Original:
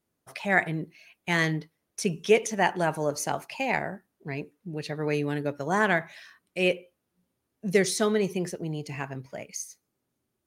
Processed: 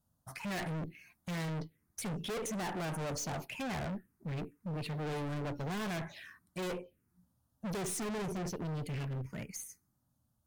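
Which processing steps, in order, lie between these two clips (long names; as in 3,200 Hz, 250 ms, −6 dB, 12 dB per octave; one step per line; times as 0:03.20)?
phaser swept by the level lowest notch 380 Hz, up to 4,400 Hz, full sweep at −23 dBFS
low-shelf EQ 270 Hz +11.5 dB
tube saturation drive 31 dB, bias 0.45
high-shelf EQ 11,000 Hz +3.5 dB
hard clipping −37 dBFS, distortion −11 dB
level +1 dB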